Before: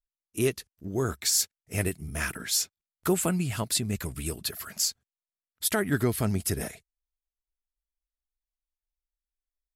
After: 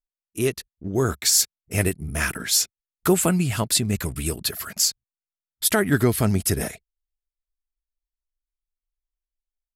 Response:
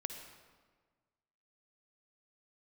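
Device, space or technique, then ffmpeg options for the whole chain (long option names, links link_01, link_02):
voice memo with heavy noise removal: -af "anlmdn=0.00398,dynaudnorm=framelen=350:gausssize=3:maxgain=6.5dB"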